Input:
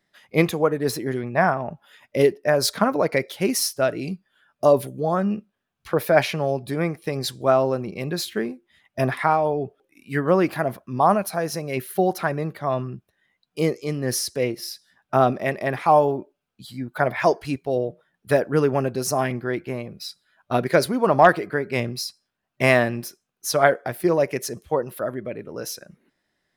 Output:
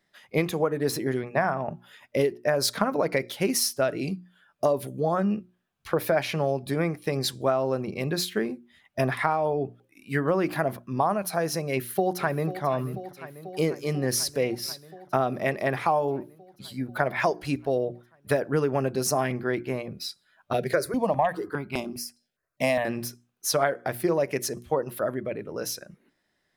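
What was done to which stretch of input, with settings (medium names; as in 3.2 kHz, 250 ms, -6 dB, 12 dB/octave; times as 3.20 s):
11.70–12.63 s: echo throw 490 ms, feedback 80%, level -16 dB
20.53–22.85 s: stepped phaser 4.9 Hz 290–1800 Hz
whole clip: hum notches 60/120/180/240/300/360 Hz; compression 6:1, threshold -20 dBFS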